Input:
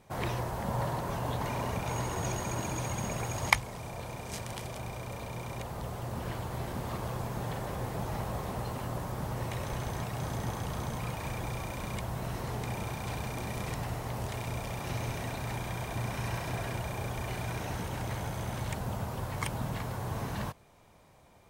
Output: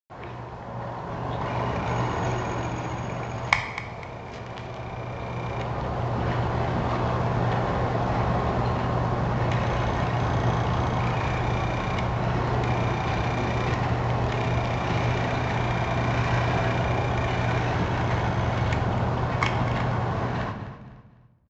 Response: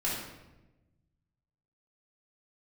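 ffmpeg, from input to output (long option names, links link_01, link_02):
-filter_complex "[0:a]highpass=frequency=1000:poles=1,aemphasis=mode=reproduction:type=riaa,dynaudnorm=framelen=340:gausssize=9:maxgain=14.5dB,acrusher=bits=7:mix=0:aa=0.000001,adynamicsmooth=sensitivity=3:basefreq=3100,aecho=1:1:252|504|756:0.2|0.0619|0.0192,asplit=2[link_01][link_02];[1:a]atrim=start_sample=2205[link_03];[link_02][link_03]afir=irnorm=-1:irlink=0,volume=-9dB[link_04];[link_01][link_04]amix=inputs=2:normalize=0,aresample=16000,aresample=44100,adynamicequalizer=threshold=0.00794:dfrequency=3500:dqfactor=0.7:tfrequency=3500:tqfactor=0.7:attack=5:release=100:ratio=0.375:range=2:mode=boostabove:tftype=highshelf,volume=-2.5dB"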